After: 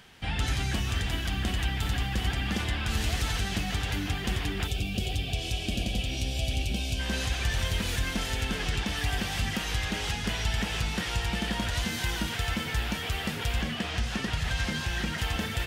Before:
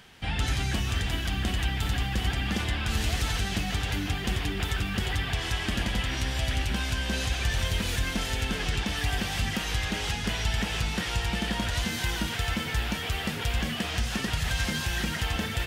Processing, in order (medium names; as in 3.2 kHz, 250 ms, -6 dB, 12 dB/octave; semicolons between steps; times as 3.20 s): 4.67–6.99 s: time-frequency box 790–2200 Hz -17 dB; 13.62–15.18 s: treble shelf 8.8 kHz -11 dB; trim -1 dB